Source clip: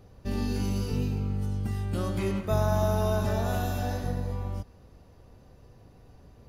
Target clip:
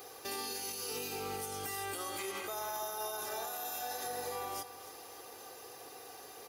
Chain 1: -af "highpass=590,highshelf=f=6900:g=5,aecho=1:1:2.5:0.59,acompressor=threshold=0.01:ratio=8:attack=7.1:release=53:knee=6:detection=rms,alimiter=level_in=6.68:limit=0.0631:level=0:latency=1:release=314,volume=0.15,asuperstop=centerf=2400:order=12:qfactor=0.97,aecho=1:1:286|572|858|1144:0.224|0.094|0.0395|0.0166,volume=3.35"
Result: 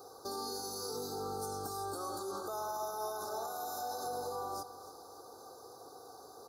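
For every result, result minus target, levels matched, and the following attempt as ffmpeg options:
compression: peak gain reduction +12 dB; 2 kHz band -9.0 dB; 8 kHz band -4.0 dB
-af "highpass=590,highshelf=f=6900:g=5,aecho=1:1:2.5:0.59,alimiter=level_in=6.68:limit=0.0631:level=0:latency=1:release=314,volume=0.15,asuperstop=centerf=2400:order=12:qfactor=0.97,aecho=1:1:286|572|858|1144:0.224|0.094|0.0395|0.0166,volume=3.35"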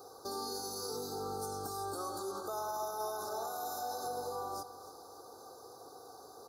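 2 kHz band -9.0 dB; 8 kHz band -4.0 dB
-af "highpass=590,highshelf=f=6900:g=5,aecho=1:1:2.5:0.59,alimiter=level_in=6.68:limit=0.0631:level=0:latency=1:release=314,volume=0.15,aecho=1:1:286|572|858|1144:0.224|0.094|0.0395|0.0166,volume=3.35"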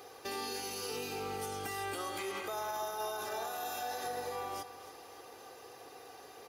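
8 kHz band -4.5 dB
-af "highpass=590,highshelf=f=6900:g=16.5,aecho=1:1:2.5:0.59,alimiter=level_in=6.68:limit=0.0631:level=0:latency=1:release=314,volume=0.15,aecho=1:1:286|572|858|1144:0.224|0.094|0.0395|0.0166,volume=3.35"

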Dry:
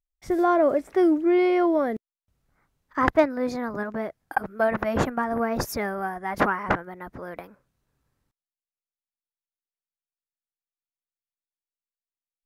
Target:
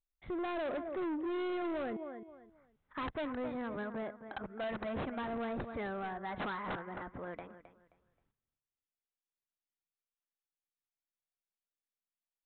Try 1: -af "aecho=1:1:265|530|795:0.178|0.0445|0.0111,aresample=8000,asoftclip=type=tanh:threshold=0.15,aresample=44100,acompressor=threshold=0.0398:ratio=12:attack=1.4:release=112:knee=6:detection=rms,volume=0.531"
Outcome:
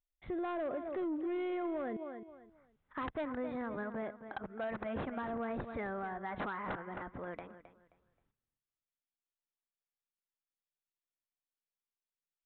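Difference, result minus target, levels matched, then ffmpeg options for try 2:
saturation: distortion -8 dB
-af "aecho=1:1:265|530|795:0.178|0.0445|0.0111,aresample=8000,asoftclip=type=tanh:threshold=0.0531,aresample=44100,acompressor=threshold=0.0398:ratio=12:attack=1.4:release=112:knee=6:detection=rms,volume=0.531"

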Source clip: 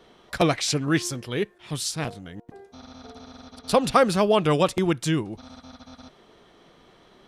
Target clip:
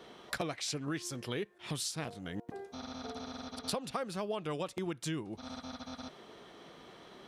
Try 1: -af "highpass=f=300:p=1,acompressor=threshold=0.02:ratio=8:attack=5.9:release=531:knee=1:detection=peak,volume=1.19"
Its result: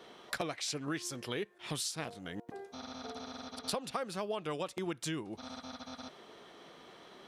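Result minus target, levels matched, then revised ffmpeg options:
125 Hz band -3.0 dB
-af "highpass=f=130:p=1,acompressor=threshold=0.02:ratio=8:attack=5.9:release=531:knee=1:detection=peak,volume=1.19"

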